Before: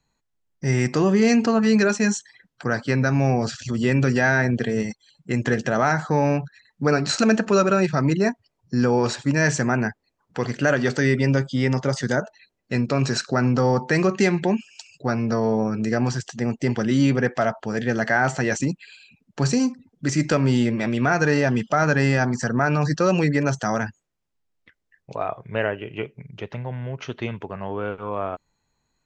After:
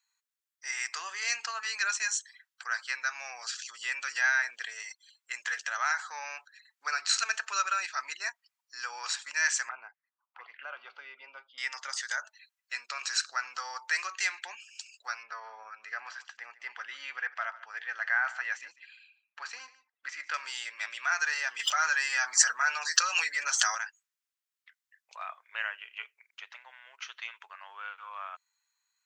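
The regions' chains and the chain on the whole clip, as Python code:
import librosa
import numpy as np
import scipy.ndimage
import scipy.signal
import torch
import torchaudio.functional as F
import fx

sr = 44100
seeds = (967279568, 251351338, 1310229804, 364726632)

y = fx.chain(x, sr, fx.lowpass(hz=2300.0, slope=24),
    fx.env_phaser(low_hz=250.0, high_hz=1800.0, full_db=-20.5), at=(9.69, 11.58))
y = fx.chain(y, sr, fx.lowpass(hz=2400.0, slope=12),
    fx.echo_single(ms=147, db=-17.5), at=(15.23, 20.34))
y = fx.chain(y, sr, fx.high_shelf(hz=7000.0, db=4.0),
    fx.notch_comb(f0_hz=170.0),
    fx.env_flatten(amount_pct=100), at=(21.59, 23.75))
y = scipy.signal.sosfilt(scipy.signal.butter(4, 1200.0, 'highpass', fs=sr, output='sos'), y)
y = fx.high_shelf(y, sr, hz=7800.0, db=7.5)
y = y * 10.0 ** (-4.0 / 20.0)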